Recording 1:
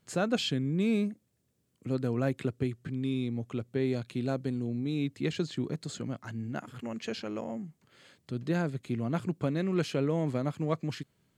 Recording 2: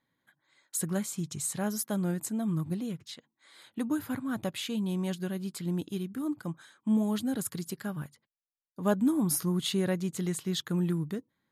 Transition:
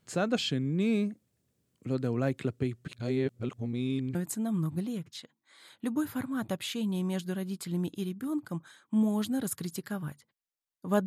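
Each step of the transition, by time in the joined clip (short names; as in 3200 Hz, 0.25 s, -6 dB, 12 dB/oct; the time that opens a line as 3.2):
recording 1
2.88–4.15 reverse
4.15 switch to recording 2 from 2.09 s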